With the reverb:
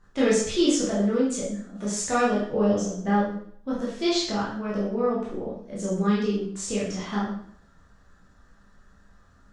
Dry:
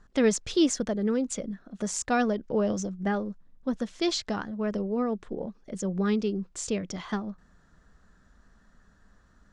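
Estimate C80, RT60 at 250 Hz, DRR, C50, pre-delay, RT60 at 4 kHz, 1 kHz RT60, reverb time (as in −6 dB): 6.5 dB, 0.60 s, −8.0 dB, 2.0 dB, 7 ms, 0.55 s, 0.55 s, 0.55 s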